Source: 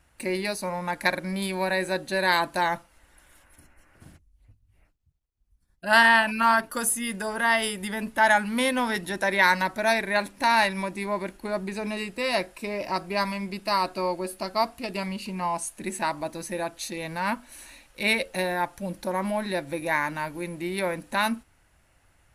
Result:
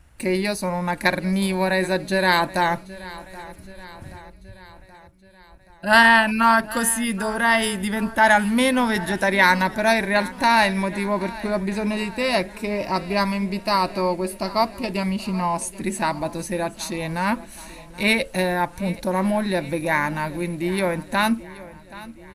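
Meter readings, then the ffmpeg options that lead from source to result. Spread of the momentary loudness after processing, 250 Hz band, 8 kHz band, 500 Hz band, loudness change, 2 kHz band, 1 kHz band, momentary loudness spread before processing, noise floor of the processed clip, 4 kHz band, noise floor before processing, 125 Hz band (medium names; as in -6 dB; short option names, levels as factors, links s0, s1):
18 LU, +8.0 dB, +3.5 dB, +5.0 dB, +4.5 dB, +4.0 dB, +4.0 dB, 11 LU, -47 dBFS, +3.5 dB, -65 dBFS, +9.0 dB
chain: -filter_complex "[0:a]lowshelf=f=210:g=9.5,asplit=2[s0][s1];[s1]aecho=0:1:777|1554|2331|3108|3885:0.119|0.0677|0.0386|0.022|0.0125[s2];[s0][s2]amix=inputs=2:normalize=0,volume=1.5"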